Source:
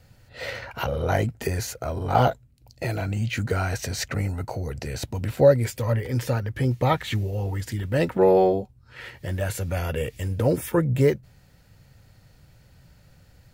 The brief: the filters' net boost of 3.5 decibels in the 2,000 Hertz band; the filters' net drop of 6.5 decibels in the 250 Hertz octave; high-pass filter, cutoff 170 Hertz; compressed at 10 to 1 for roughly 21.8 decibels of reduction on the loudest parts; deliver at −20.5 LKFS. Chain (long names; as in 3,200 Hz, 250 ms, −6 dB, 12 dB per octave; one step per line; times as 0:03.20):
high-pass filter 170 Hz
parametric band 250 Hz −8.5 dB
parametric band 2,000 Hz +4.5 dB
downward compressor 10 to 1, threshold −35 dBFS
level +19 dB